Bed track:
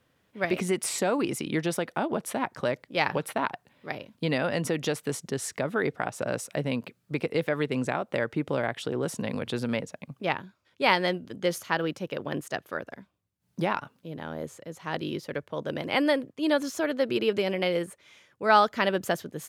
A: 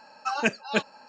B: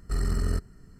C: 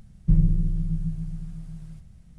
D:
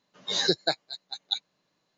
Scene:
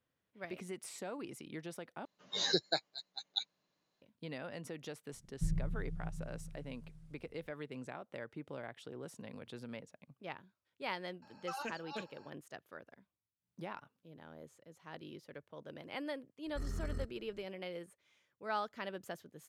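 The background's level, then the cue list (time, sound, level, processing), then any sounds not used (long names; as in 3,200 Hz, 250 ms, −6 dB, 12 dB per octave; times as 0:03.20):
bed track −17.5 dB
0:02.05: overwrite with D −7.5 dB
0:05.13: mix in C −16 dB
0:11.22: mix in A −11.5 dB + downward compressor, threshold −26 dBFS
0:16.46: mix in B −13.5 dB + high-shelf EQ 7,300 Hz −7.5 dB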